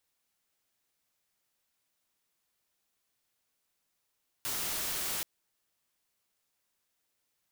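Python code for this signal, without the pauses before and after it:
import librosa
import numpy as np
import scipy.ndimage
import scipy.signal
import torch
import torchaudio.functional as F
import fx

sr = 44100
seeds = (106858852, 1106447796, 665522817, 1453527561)

y = fx.noise_colour(sr, seeds[0], length_s=0.78, colour='white', level_db=-34.5)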